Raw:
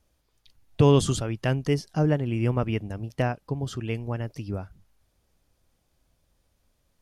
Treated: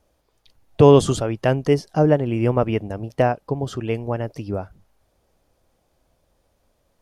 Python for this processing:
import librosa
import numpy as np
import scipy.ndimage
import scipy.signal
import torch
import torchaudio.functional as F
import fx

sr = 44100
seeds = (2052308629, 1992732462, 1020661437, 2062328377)

y = fx.peak_eq(x, sr, hz=600.0, db=9.0, octaves=2.1)
y = y * 10.0 ** (1.5 / 20.0)